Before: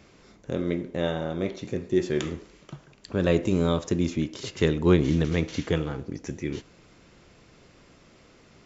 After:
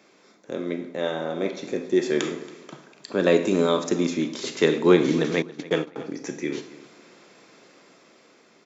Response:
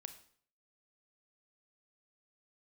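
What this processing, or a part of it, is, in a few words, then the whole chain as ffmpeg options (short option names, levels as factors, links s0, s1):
far laptop microphone: -filter_complex "[1:a]atrim=start_sample=2205[s0];[0:a][s0]afir=irnorm=-1:irlink=0,highpass=150,dynaudnorm=f=370:g=7:m=1.88,bandreject=f=2900:w=13,asettb=1/sr,asplit=3[s1][s2][s3];[s1]atrim=end=5.424[s4];[s2]atrim=start=5.42:end=5.96,asetpts=PTS-STARTPTS,afade=t=in:d=0.004:c=qsin,afade=t=out:st=0.536:d=0.004:c=qsin,agate=range=0.0398:threshold=0.0501:ratio=16:detection=peak[s5];[s3]atrim=start=5.956[s6];[s4][s5]acrossfade=d=0.004:c1=hsin:c2=qsin[s7];[s7][s6]acrossfade=d=0.004:c1=qsin:c2=hsin,highpass=250,asplit=2[s8][s9];[s9]adelay=277,lowpass=f=5000:p=1,volume=0.119,asplit=2[s10][s11];[s11]adelay=277,lowpass=f=5000:p=1,volume=0.29[s12];[s8][s10][s12]amix=inputs=3:normalize=0,volume=1.78"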